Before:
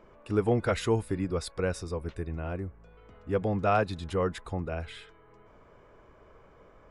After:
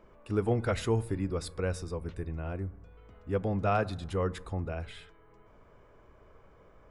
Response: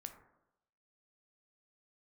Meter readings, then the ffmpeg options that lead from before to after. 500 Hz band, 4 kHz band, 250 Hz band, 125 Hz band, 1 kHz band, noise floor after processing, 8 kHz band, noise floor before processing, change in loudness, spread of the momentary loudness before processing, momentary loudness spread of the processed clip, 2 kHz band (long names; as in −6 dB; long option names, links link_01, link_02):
−3.0 dB, −3.0 dB, −2.5 dB, 0.0 dB, −3.0 dB, −59 dBFS, −2.5 dB, −57 dBFS, −2.0 dB, 12 LU, 10 LU, −3.0 dB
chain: -filter_complex "[0:a]asplit=2[link_01][link_02];[link_02]lowshelf=frequency=190:gain=12[link_03];[1:a]atrim=start_sample=2205,highshelf=frequency=8600:gain=11.5[link_04];[link_03][link_04]afir=irnorm=-1:irlink=0,volume=-5.5dB[link_05];[link_01][link_05]amix=inputs=2:normalize=0,volume=-5.5dB"